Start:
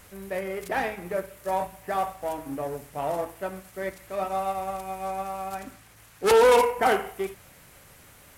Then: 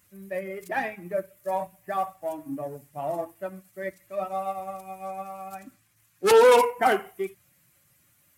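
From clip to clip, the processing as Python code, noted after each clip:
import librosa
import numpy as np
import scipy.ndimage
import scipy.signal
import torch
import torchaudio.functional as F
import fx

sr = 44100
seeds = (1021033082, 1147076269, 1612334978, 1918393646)

y = fx.bin_expand(x, sr, power=1.5)
y = scipy.signal.sosfilt(scipy.signal.butter(2, 130.0, 'highpass', fs=sr, output='sos'), y)
y = y * librosa.db_to_amplitude(2.5)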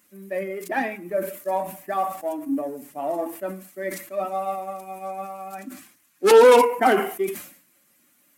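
y = fx.low_shelf_res(x, sr, hz=170.0, db=-12.5, q=3.0)
y = fx.sustainer(y, sr, db_per_s=100.0)
y = y * librosa.db_to_amplitude(2.0)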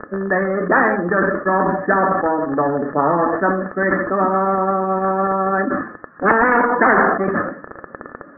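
y = fx.dmg_crackle(x, sr, seeds[0], per_s=20.0, level_db=-29.0)
y = scipy.signal.sosfilt(scipy.signal.cheby1(6, 9, 1800.0, 'lowpass', fs=sr, output='sos'), y)
y = fx.spectral_comp(y, sr, ratio=10.0)
y = y * librosa.db_to_amplitude(5.0)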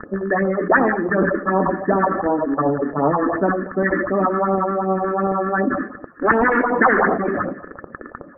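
y = fx.phaser_stages(x, sr, stages=4, low_hz=110.0, high_hz=2000.0, hz=2.7, feedback_pct=20)
y = y + 10.0 ** (-19.0 / 20.0) * np.pad(y, (int(228 * sr / 1000.0), 0))[:len(y)]
y = y * librosa.db_to_amplitude(2.0)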